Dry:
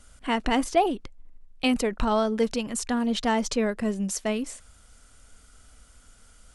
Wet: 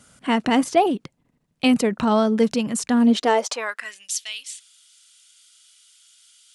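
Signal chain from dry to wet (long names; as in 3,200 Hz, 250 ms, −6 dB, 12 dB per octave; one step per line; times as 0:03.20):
high-pass filter sweep 150 Hz → 3,300 Hz, 0:02.91–0:04.09
level +3.5 dB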